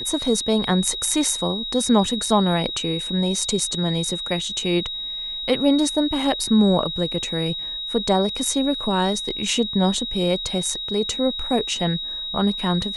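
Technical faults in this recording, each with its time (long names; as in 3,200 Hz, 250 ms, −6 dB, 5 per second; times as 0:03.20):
whistle 3,800 Hz −27 dBFS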